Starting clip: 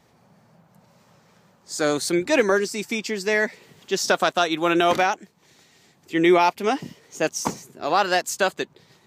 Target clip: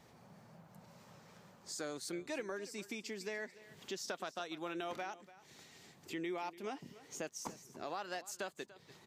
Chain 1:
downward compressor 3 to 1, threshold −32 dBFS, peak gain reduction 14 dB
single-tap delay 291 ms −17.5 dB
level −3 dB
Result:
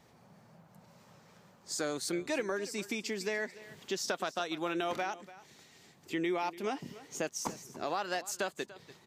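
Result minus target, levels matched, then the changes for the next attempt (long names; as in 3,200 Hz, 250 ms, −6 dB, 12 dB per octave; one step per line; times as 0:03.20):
downward compressor: peak gain reduction −7.5 dB
change: downward compressor 3 to 1, threshold −43.5 dBFS, peak gain reduction 22 dB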